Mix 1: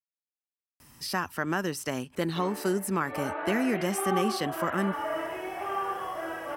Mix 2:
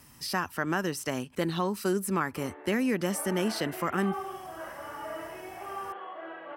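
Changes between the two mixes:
speech: entry -0.80 s; background -6.5 dB

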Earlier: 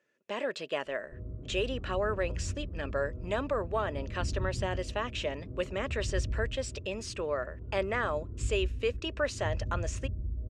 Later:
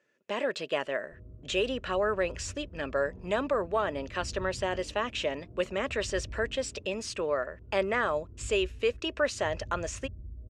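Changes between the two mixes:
speech +3.0 dB; first sound -8.0 dB; second sound: entry +1.00 s

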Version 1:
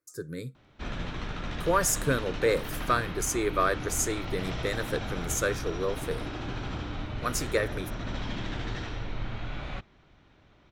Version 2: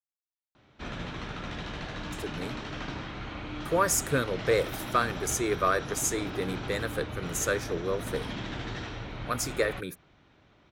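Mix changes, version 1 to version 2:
speech: entry +2.05 s; master: add high-pass 82 Hz 6 dB/octave

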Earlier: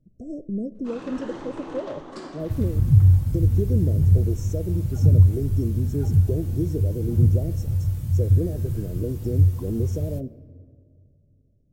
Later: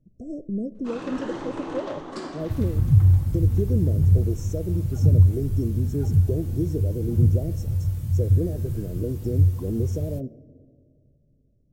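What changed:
first sound +3.5 dB; second sound: send -10.5 dB

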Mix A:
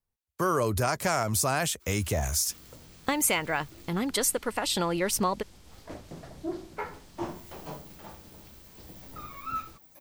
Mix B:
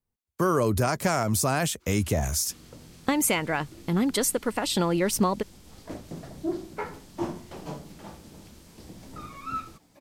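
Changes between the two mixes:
first sound: add distance through air 73 m; second sound: add treble shelf 5.6 kHz +6 dB; master: add peaking EQ 220 Hz +6.5 dB 2 oct

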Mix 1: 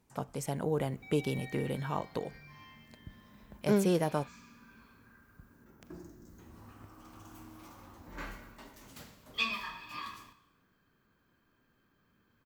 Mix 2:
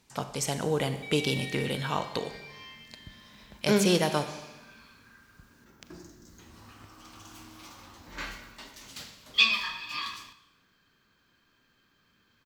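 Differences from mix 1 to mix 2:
speech: send on; master: add peaking EQ 4.2 kHz +13.5 dB 2.4 oct

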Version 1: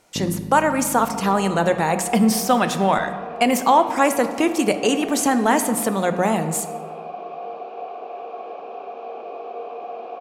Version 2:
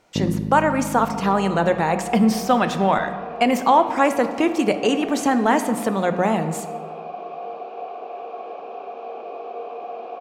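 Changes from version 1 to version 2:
speech: add peaking EQ 11 kHz -12 dB 1.4 oct; first sound +5.5 dB

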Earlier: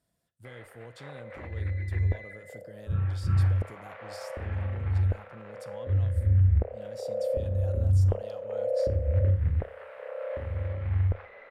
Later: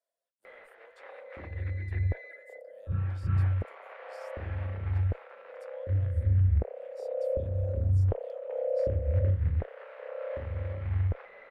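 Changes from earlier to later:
speech: add ladder high-pass 480 Hz, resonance 55%; reverb: off

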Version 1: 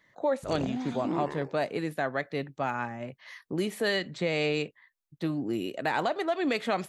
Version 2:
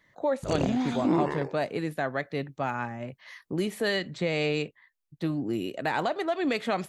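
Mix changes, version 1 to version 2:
speech: add bass shelf 120 Hz +6.5 dB; background +7.0 dB

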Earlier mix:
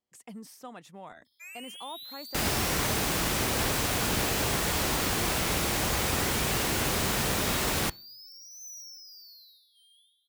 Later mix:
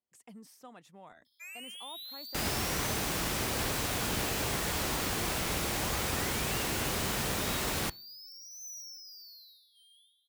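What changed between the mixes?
speech -7.0 dB; first sound: send off; second sound -4.5 dB

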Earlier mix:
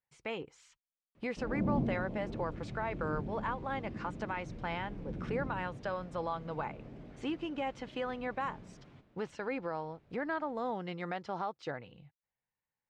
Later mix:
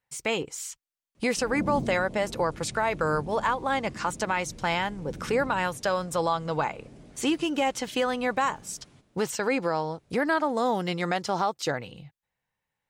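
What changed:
speech +10.5 dB; master: remove low-pass 2.8 kHz 12 dB/octave

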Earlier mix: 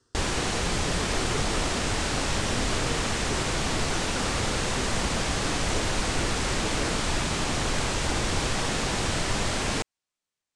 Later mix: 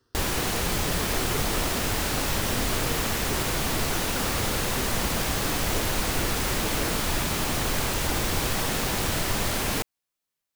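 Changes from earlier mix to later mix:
speech: add Savitzky-Golay filter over 15 samples; master: remove steep low-pass 9 kHz 36 dB/octave

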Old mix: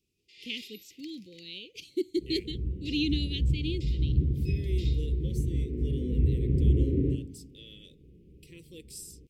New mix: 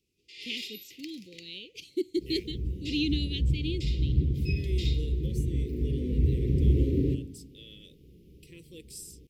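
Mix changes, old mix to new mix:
first sound +7.5 dB; second sound: remove distance through air 490 m

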